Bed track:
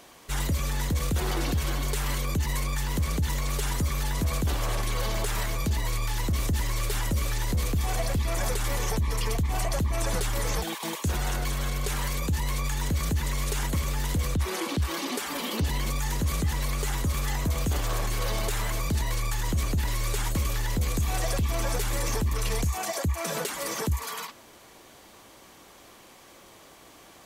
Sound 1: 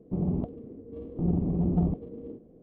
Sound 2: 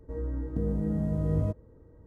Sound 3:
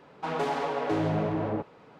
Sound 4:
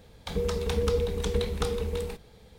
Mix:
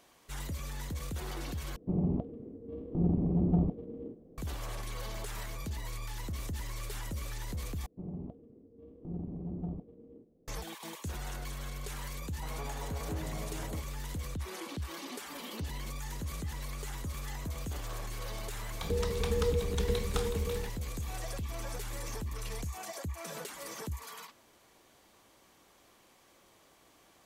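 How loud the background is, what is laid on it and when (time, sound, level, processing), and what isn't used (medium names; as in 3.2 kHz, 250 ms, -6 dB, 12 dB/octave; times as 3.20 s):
bed track -11.5 dB
1.76 s: replace with 1 -2 dB
7.86 s: replace with 1 -13 dB
12.19 s: add 3 -15 dB
18.54 s: add 4 -4 dB
not used: 2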